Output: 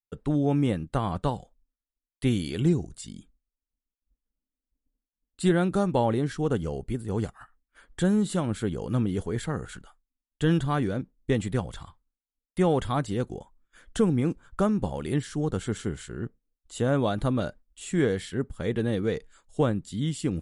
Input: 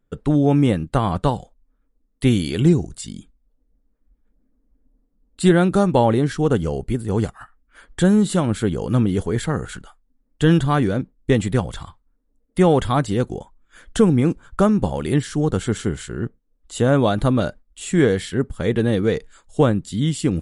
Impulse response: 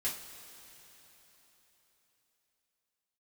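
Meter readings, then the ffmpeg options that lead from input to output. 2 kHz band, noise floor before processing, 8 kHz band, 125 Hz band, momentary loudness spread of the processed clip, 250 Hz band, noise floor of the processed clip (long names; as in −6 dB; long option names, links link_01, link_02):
−8.0 dB, −67 dBFS, −8.0 dB, −8.0 dB, 13 LU, −8.0 dB, below −85 dBFS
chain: -af "agate=range=-33dB:threshold=-49dB:ratio=3:detection=peak,volume=-8dB"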